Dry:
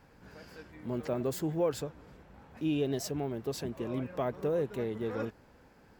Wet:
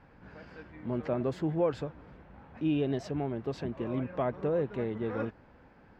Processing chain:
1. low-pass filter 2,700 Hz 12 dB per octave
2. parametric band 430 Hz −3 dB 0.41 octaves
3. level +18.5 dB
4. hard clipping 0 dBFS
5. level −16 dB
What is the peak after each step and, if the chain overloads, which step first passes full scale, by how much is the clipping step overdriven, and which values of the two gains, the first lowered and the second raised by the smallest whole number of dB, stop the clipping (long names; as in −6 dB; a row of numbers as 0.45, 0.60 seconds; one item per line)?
−19.0, −20.0, −1.5, −1.5, −17.5 dBFS
no step passes full scale